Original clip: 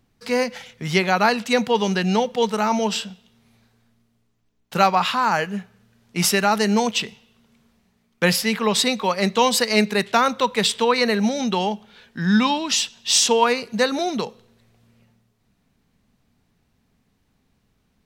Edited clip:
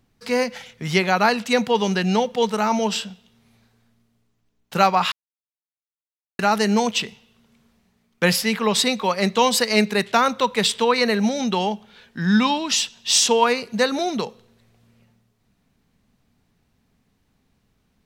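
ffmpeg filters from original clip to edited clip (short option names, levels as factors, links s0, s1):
-filter_complex "[0:a]asplit=3[s0][s1][s2];[s0]atrim=end=5.12,asetpts=PTS-STARTPTS,afade=t=out:st=5.116:d=0.004:c=hsin[s3];[s1]atrim=start=5.12:end=6.39,asetpts=PTS-STARTPTS,volume=0[s4];[s2]atrim=start=6.39,asetpts=PTS-STARTPTS,afade=t=in:d=0.004:c=hsin[s5];[s3][s4][s5]concat=n=3:v=0:a=1"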